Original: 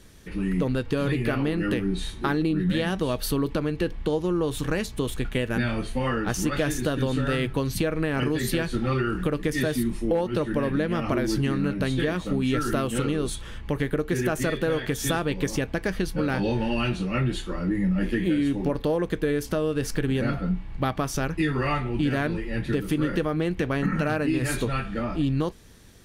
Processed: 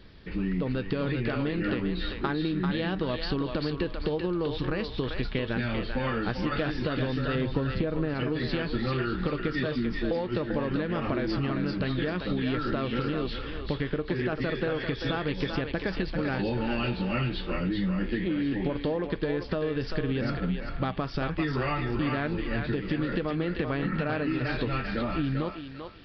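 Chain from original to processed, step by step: 7.35–8.14 tilt shelf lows +6.5 dB, about 1400 Hz; compressor, threshold -25 dBFS, peak gain reduction 10 dB; on a send: thinning echo 0.392 s, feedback 31%, high-pass 640 Hz, level -3.5 dB; on the sum: downsampling 11025 Hz

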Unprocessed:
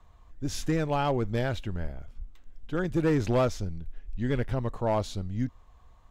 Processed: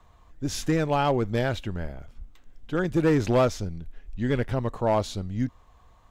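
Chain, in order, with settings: low shelf 82 Hz -7 dB; gain +4 dB

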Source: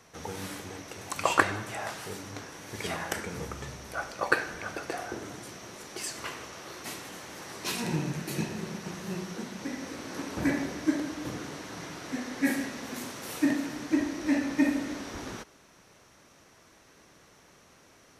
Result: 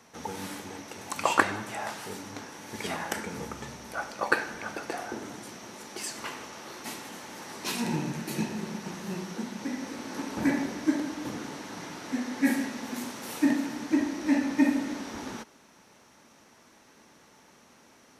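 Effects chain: low shelf 130 Hz -8.5 dB; small resonant body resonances 230/870 Hz, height 8 dB, ringing for 45 ms

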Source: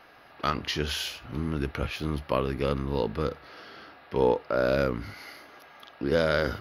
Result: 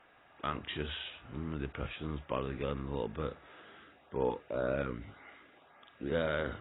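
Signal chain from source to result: 3.77–6.1 LFO notch saw up 1.9 Hz 480–5500 Hz; gain -8.5 dB; AAC 16 kbps 16000 Hz

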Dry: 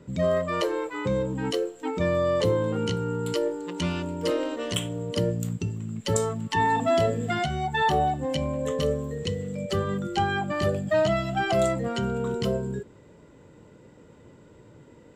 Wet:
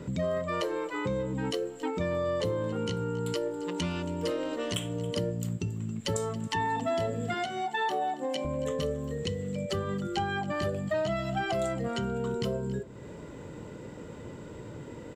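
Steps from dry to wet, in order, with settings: 7.34–8.45 HPF 260 Hz 24 dB/oct; compressor 2.5:1, threshold -44 dBFS, peak gain reduction 16.5 dB; on a send: echo 0.276 s -18.5 dB; on the sum: gain +8.5 dB

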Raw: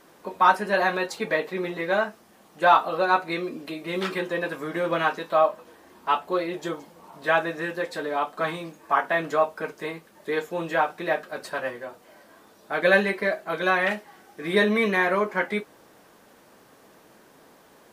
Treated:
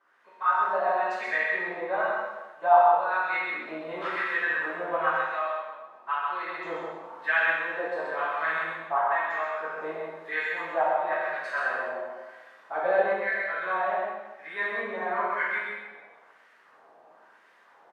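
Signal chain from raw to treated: vocal rider within 5 dB 0.5 s; LFO band-pass sine 0.99 Hz 690–2000 Hz; echo 0.129 s -3.5 dB; plate-style reverb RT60 1.1 s, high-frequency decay 0.95×, DRR -6.5 dB; gain -5 dB

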